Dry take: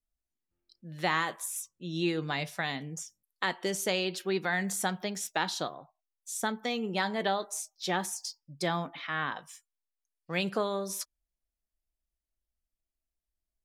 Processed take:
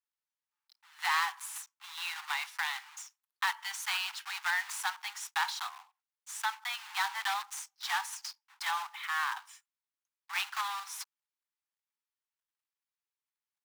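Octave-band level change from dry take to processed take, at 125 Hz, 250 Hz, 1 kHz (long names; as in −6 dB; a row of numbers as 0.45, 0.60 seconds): below −40 dB, below −40 dB, −0.5 dB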